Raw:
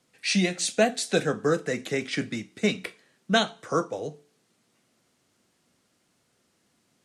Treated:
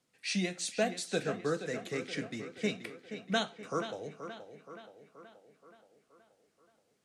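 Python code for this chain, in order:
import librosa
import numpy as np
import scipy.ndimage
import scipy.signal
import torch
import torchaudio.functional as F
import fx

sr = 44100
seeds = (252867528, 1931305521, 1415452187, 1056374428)

y = fx.echo_tape(x, sr, ms=476, feedback_pct=60, wet_db=-9.0, lp_hz=4100.0, drive_db=11.0, wow_cents=16)
y = y * 10.0 ** (-9.0 / 20.0)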